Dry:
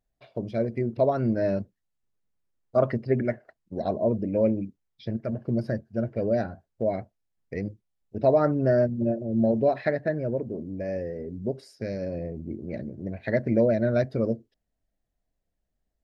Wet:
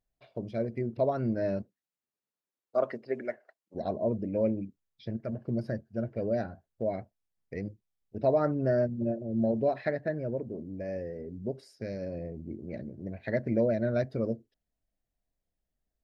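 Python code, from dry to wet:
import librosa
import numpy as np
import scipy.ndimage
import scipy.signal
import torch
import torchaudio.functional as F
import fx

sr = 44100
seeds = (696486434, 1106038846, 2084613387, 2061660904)

y = fx.highpass(x, sr, hz=fx.line((1.61, 180.0), (3.74, 530.0)), slope=12, at=(1.61, 3.74), fade=0.02)
y = y * 10.0 ** (-5.0 / 20.0)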